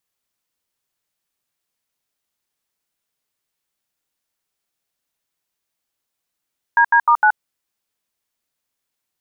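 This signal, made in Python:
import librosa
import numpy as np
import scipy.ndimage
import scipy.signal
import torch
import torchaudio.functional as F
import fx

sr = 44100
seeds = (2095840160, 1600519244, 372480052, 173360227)

y = fx.dtmf(sr, digits='DD*9', tone_ms=76, gap_ms=77, level_db=-12.0)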